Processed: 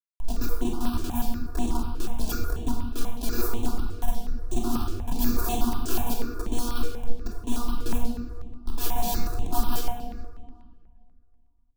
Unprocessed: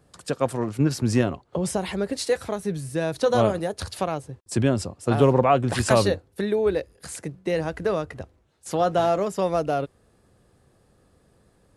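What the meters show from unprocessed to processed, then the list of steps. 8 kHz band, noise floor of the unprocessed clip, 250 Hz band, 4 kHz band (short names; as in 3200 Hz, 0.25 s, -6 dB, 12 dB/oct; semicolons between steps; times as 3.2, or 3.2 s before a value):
-2.0 dB, -62 dBFS, -4.5 dB, -3.5 dB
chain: tremolo 4.4 Hz, depth 63%; robotiser 240 Hz; careless resampling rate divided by 3×, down none, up zero stuff; low shelf 390 Hz -3.5 dB; in parallel at -6.5 dB: hard clip -12 dBFS, distortion -9 dB; on the sum: fifteen-band EQ 160 Hz +4 dB, 630 Hz -4 dB, 2500 Hz -8 dB, 10000 Hz -7 dB; Schmitt trigger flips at -19 dBFS; fixed phaser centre 540 Hz, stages 6; flange 0.76 Hz, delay 0.1 ms, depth 2.9 ms, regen +72%; on a send: tape echo 0.412 s, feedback 32%, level -21 dB, low-pass 2600 Hz; on the sum: shoebox room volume 1400 m³, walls mixed, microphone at 3 m; step phaser 8.2 Hz 220–4900 Hz; gain +1.5 dB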